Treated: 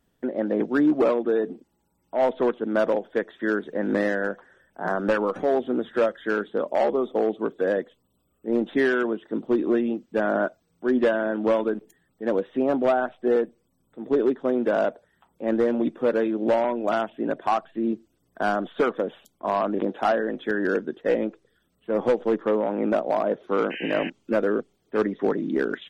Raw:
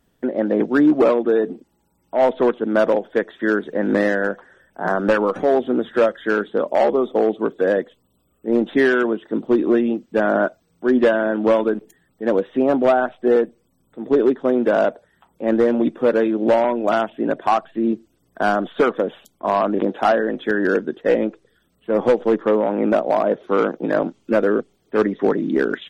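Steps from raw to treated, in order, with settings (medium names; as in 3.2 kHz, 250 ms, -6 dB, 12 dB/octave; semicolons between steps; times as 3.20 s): painted sound noise, 23.70–24.10 s, 1.5–3.1 kHz -30 dBFS; trim -5.5 dB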